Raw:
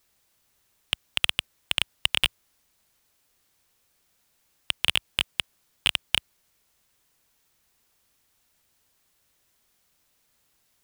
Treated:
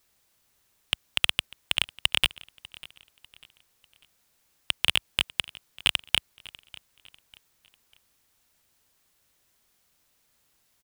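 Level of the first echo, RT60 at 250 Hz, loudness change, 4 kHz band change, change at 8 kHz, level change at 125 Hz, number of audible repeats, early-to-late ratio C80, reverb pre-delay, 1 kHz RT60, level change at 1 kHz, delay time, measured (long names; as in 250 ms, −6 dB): −21.5 dB, no reverb audible, 0.0 dB, 0.0 dB, 0.0 dB, 0.0 dB, 2, no reverb audible, no reverb audible, no reverb audible, 0.0 dB, 596 ms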